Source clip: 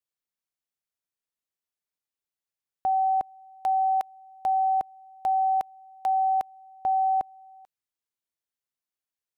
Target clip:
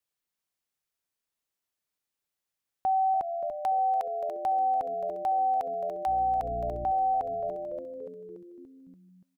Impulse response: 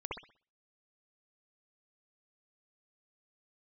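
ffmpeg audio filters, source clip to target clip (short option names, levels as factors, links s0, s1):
-filter_complex "[0:a]asettb=1/sr,asplit=3[s0][s1][s2];[s0]atrim=end=6.074[s3];[s1]atrim=start=6.07:end=6.92,asetpts=PTS-STARTPTS,afade=t=in:d=0.004:c=qsin,afade=t=out:st=0.846:d=0.004:c=qsin,aeval=exprs='val(0)+0.00891*(sin(2*PI*60*n/s)+sin(2*PI*2*60*n/s)/2+sin(2*PI*3*60*n/s)/3+sin(2*PI*4*60*n/s)/4+sin(2*PI*5*60*n/s)/5)':c=same[s4];[s2]atrim=start=6.916[s5];[s3][s4]acrossfade=d=0.004:c1=hsin:c2=qsin[s6];[s6][s5]acrossfade=d=0.004:c1=qsin:c2=hsin,asplit=2[s7][s8];[s8]asplit=7[s9][s10][s11][s12][s13][s14][s15];[s9]adelay=288,afreqshift=-83,volume=0.211[s16];[s10]adelay=576,afreqshift=-166,volume=0.133[s17];[s11]adelay=864,afreqshift=-249,volume=0.0841[s18];[s12]adelay=1152,afreqshift=-332,volume=0.0531[s19];[s13]adelay=1440,afreqshift=-415,volume=0.0331[s20];[s14]adelay=1728,afreqshift=-498,volume=0.0209[s21];[s15]adelay=2016,afreqshift=-581,volume=0.0132[s22];[s16][s17][s18][s19][s20][s21][s22]amix=inputs=7:normalize=0[s23];[s7][s23]amix=inputs=2:normalize=0,acompressor=threshold=0.0562:ratio=6,alimiter=level_in=1.19:limit=0.0631:level=0:latency=1:release=43,volume=0.841,volume=1.58"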